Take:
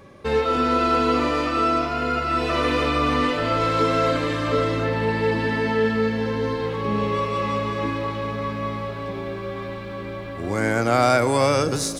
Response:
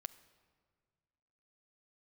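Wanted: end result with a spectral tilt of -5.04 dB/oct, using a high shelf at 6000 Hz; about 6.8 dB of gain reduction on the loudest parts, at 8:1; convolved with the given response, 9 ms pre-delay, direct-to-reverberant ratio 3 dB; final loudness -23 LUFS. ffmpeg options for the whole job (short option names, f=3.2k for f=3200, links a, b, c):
-filter_complex "[0:a]highshelf=f=6k:g=-6.5,acompressor=threshold=-21dB:ratio=8,asplit=2[a][b];[1:a]atrim=start_sample=2205,adelay=9[c];[b][c]afir=irnorm=-1:irlink=0,volume=1dB[d];[a][d]amix=inputs=2:normalize=0"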